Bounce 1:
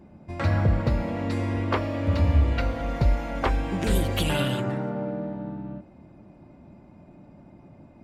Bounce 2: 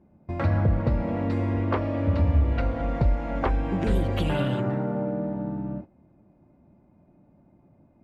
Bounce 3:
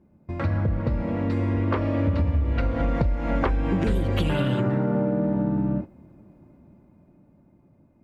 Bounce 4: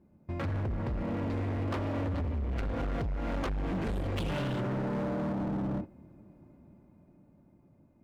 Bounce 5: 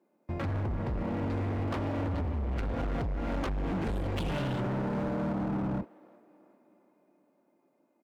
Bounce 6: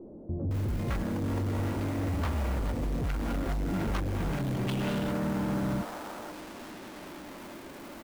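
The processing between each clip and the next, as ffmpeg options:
ffmpeg -i in.wav -af "acompressor=threshold=-34dB:ratio=1.5,lowpass=frequency=1300:poles=1,agate=range=-14dB:threshold=-42dB:ratio=16:detection=peak,volume=5.5dB" out.wav
ffmpeg -i in.wav -af "dynaudnorm=framelen=350:gausssize=11:maxgain=11.5dB,equalizer=frequency=730:width_type=o:width=0.51:gain=-5.5,acompressor=threshold=-19dB:ratio=10" out.wav
ffmpeg -i in.wav -af "volume=26dB,asoftclip=hard,volume=-26dB,volume=-4dB" out.wav
ffmpeg -i in.wav -filter_complex "[0:a]asplit=2[link_01][link_02];[link_02]adelay=373,lowpass=frequency=3200:poles=1,volume=-19dB,asplit=2[link_03][link_04];[link_04]adelay=373,lowpass=frequency=3200:poles=1,volume=0.5,asplit=2[link_05][link_06];[link_06]adelay=373,lowpass=frequency=3200:poles=1,volume=0.5,asplit=2[link_07][link_08];[link_08]adelay=373,lowpass=frequency=3200:poles=1,volume=0.5[link_09];[link_01][link_03][link_05][link_07][link_09]amix=inputs=5:normalize=0,acrossover=split=300[link_10][link_11];[link_10]acrusher=bits=5:mix=0:aa=0.5[link_12];[link_12][link_11]amix=inputs=2:normalize=0" out.wav
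ffmpeg -i in.wav -filter_complex "[0:a]aeval=exprs='val(0)+0.5*0.0133*sgn(val(0))':channel_layout=same,acrusher=bits=6:mode=log:mix=0:aa=0.000001,acrossover=split=550[link_01][link_02];[link_02]adelay=510[link_03];[link_01][link_03]amix=inputs=2:normalize=0" out.wav

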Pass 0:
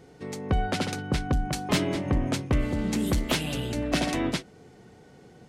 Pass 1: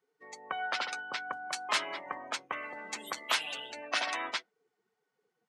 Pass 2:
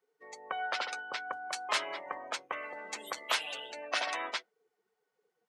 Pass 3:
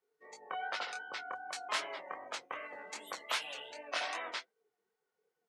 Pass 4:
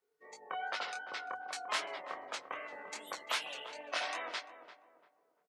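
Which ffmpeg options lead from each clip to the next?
ffmpeg -i in.wav -af "afftdn=noise_reduction=25:noise_floor=-39,highpass=frequency=1100:width_type=q:width=1.7,volume=-1.5dB" out.wav
ffmpeg -i in.wav -af "equalizer=frequency=125:width_type=o:width=1:gain=-5,equalizer=frequency=250:width_type=o:width=1:gain=-4,equalizer=frequency=500:width_type=o:width=1:gain=5,volume=-1.5dB" out.wav
ffmpeg -i in.wav -af "flanger=delay=19.5:depth=6.2:speed=2.6,volume=-1dB" out.wav
ffmpeg -i in.wav -filter_complex "[0:a]asplit=2[link_01][link_02];[link_02]adelay=344,lowpass=frequency=1100:poles=1,volume=-10dB,asplit=2[link_03][link_04];[link_04]adelay=344,lowpass=frequency=1100:poles=1,volume=0.38,asplit=2[link_05][link_06];[link_06]adelay=344,lowpass=frequency=1100:poles=1,volume=0.38,asplit=2[link_07][link_08];[link_08]adelay=344,lowpass=frequency=1100:poles=1,volume=0.38[link_09];[link_01][link_03][link_05][link_07][link_09]amix=inputs=5:normalize=0" out.wav

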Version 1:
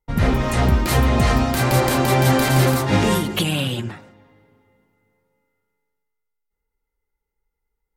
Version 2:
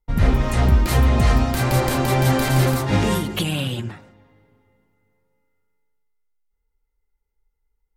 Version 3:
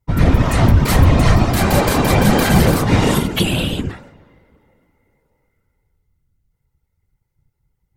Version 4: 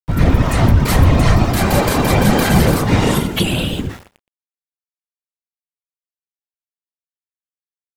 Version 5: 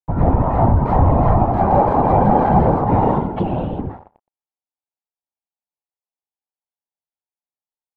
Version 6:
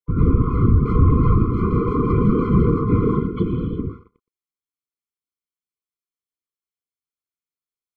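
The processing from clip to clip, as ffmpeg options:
ffmpeg -i in.wav -af "lowshelf=frequency=62:gain=12,volume=-3dB" out.wav
ffmpeg -i in.wav -af "afftfilt=real='hypot(re,im)*cos(2*PI*random(0))':imag='hypot(re,im)*sin(2*PI*random(1))':win_size=512:overlap=0.75,alimiter=level_in=12.5dB:limit=-1dB:release=50:level=0:latency=1,volume=-1dB" out.wav
ffmpeg -i in.wav -af "aeval=exprs='val(0)*gte(abs(val(0)),0.0188)':channel_layout=same,aecho=1:1:119:0.0891" out.wav
ffmpeg -i in.wav -af "lowpass=frequency=840:width_type=q:width=3.8,volume=-3.5dB" out.wav
ffmpeg -i in.wav -af "afftfilt=real='re*eq(mod(floor(b*sr/1024/500),2),0)':imag='im*eq(mod(floor(b*sr/1024/500),2),0)':win_size=1024:overlap=0.75" out.wav

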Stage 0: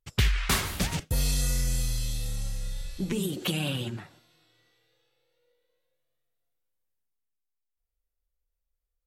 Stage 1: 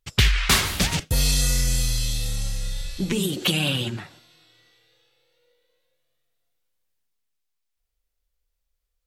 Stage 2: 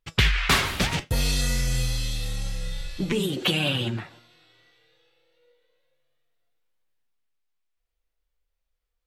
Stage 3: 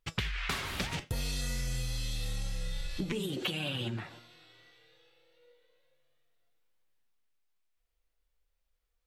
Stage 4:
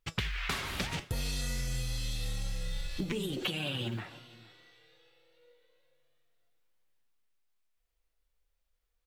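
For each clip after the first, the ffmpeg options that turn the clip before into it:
ffmpeg -i in.wav -af "equalizer=frequency=3900:width_type=o:width=2.3:gain=5,acontrast=21" out.wav
ffmpeg -i in.wav -af "bass=frequency=250:gain=-3,treble=frequency=4000:gain=-9,flanger=delay=6:depth=2.8:regen=71:speed=0.38:shape=sinusoidal,volume=5.5dB" out.wav
ffmpeg -i in.wav -af "acompressor=threshold=-31dB:ratio=12" out.wav
ffmpeg -i in.wav -af "acrusher=bits=9:mode=log:mix=0:aa=0.000001,aecho=1:1:465:0.0841" out.wav

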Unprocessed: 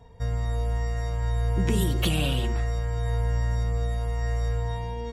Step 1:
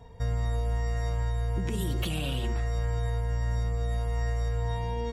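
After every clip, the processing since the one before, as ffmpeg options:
ffmpeg -i in.wav -af "alimiter=limit=-22.5dB:level=0:latency=1:release=240,volume=1.5dB" out.wav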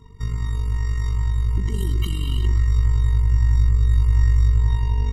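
ffmpeg -i in.wav -af "asubboost=boost=8:cutoff=60,tremolo=f=47:d=0.71,afftfilt=real='re*eq(mod(floor(b*sr/1024/460),2),0)':imag='im*eq(mod(floor(b*sr/1024/460),2),0)':win_size=1024:overlap=0.75,volume=6.5dB" out.wav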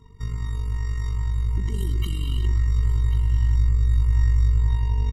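ffmpeg -i in.wav -af "aecho=1:1:1090:0.188,volume=-3.5dB" out.wav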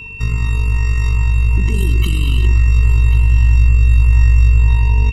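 ffmpeg -i in.wav -filter_complex "[0:a]asplit=2[link_01][link_02];[link_02]alimiter=limit=-18.5dB:level=0:latency=1:release=49,volume=-0.5dB[link_03];[link_01][link_03]amix=inputs=2:normalize=0,aeval=exprs='val(0)+0.0178*sin(2*PI*2700*n/s)':channel_layout=same,volume=5.5dB" out.wav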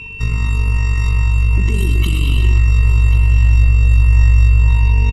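ffmpeg -i in.wav -af "aecho=1:1:124:0.335" -ar 48000 -c:a mp2 -b:a 96k out.mp2

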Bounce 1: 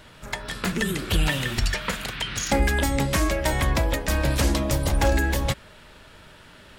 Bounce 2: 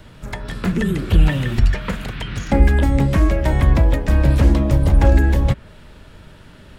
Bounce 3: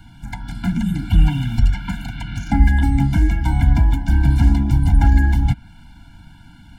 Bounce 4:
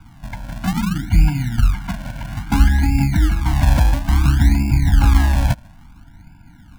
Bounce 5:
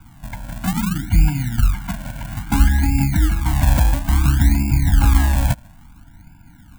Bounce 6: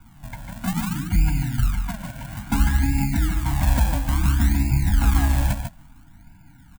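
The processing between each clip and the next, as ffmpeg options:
ffmpeg -i in.wav -filter_complex "[0:a]lowshelf=frequency=400:gain=11.5,acrossover=split=230|990|3000[link_01][link_02][link_03][link_04];[link_04]acompressor=threshold=-40dB:ratio=6[link_05];[link_01][link_02][link_03][link_05]amix=inputs=4:normalize=0,volume=-1dB" out.wav
ffmpeg -i in.wav -af "afftfilt=real='re*eq(mod(floor(b*sr/1024/340),2),0)':imag='im*eq(mod(floor(b*sr/1024/340),2),0)':win_size=1024:overlap=0.75" out.wav
ffmpeg -i in.wav -filter_complex "[0:a]acrossover=split=540[link_01][link_02];[link_01]acrusher=samples=36:mix=1:aa=0.000001:lfo=1:lforange=36:lforate=0.59[link_03];[link_02]adynamicsmooth=sensitivity=2:basefreq=1600[link_04];[link_03][link_04]amix=inputs=2:normalize=0" out.wav
ffmpeg -i in.wav -af "aexciter=amount=2.6:drive=3.3:freq=7200,volume=-1dB" out.wav
ffmpeg -i in.wav -filter_complex "[0:a]asplit=2[link_01][link_02];[link_02]aecho=0:1:146:0.447[link_03];[link_01][link_03]amix=inputs=2:normalize=0,flanger=delay=4.1:depth=3.6:regen=58:speed=1.6:shape=sinusoidal" out.wav

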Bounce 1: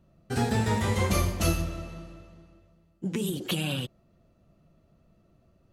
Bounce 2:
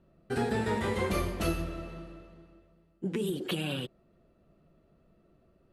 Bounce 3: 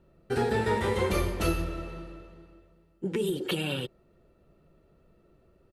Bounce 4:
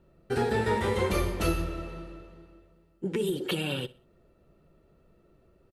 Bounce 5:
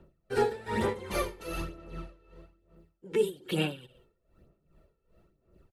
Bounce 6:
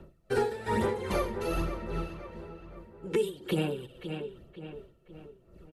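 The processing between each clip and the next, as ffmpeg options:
ffmpeg -i in.wav -filter_complex "[0:a]equalizer=frequency=100:width_type=o:width=0.67:gain=-7,equalizer=frequency=400:width_type=o:width=0.67:gain=6,equalizer=frequency=1600:width_type=o:width=0.67:gain=3,equalizer=frequency=6300:width_type=o:width=0.67:gain=-9,asplit=2[link_01][link_02];[link_02]alimiter=limit=-22.5dB:level=0:latency=1:release=294,volume=-2dB[link_03];[link_01][link_03]amix=inputs=2:normalize=0,lowpass=11000,volume=-7dB" out.wav
ffmpeg -i in.wav -af "aecho=1:1:2.2:0.32,volume=2.5dB" out.wav
ffmpeg -i in.wav -af "aecho=1:1:62|124|186:0.1|0.034|0.0116" out.wav
ffmpeg -i in.wav -filter_complex "[0:a]acrossover=split=180[link_01][link_02];[link_01]asoftclip=type=tanh:threshold=-39dB[link_03];[link_03][link_02]amix=inputs=2:normalize=0,aphaser=in_gain=1:out_gain=1:delay=2.3:decay=0.51:speed=1.1:type=sinusoidal,aeval=exprs='val(0)*pow(10,-18*(0.5-0.5*cos(2*PI*2.5*n/s))/20)':channel_layout=same" out.wav
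ffmpeg -i in.wav -filter_complex "[0:a]aresample=32000,aresample=44100,asplit=2[link_01][link_02];[link_02]adelay=523,lowpass=frequency=2400:poles=1,volume=-14.5dB,asplit=2[link_03][link_04];[link_04]adelay=523,lowpass=frequency=2400:poles=1,volume=0.5,asplit=2[link_05][link_06];[link_06]adelay=523,lowpass=frequency=2400:poles=1,volume=0.5,asplit=2[link_07][link_08];[link_08]adelay=523,lowpass=frequency=2400:poles=1,volume=0.5,asplit=2[link_09][link_10];[link_10]adelay=523,lowpass=frequency=2400:poles=1,volume=0.5[link_11];[link_01][link_03][link_05][link_07][link_09][link_11]amix=inputs=6:normalize=0,acrossover=split=1400|6500[link_12][link_13][link_14];[link_12]acompressor=threshold=-33dB:ratio=4[link_15];[link_13]acompressor=threshold=-50dB:ratio=4[link_16];[link_14]acompressor=threshold=-60dB:ratio=4[link_17];[link_15][link_16][link_17]amix=inputs=3:normalize=0,volume=7dB" out.wav

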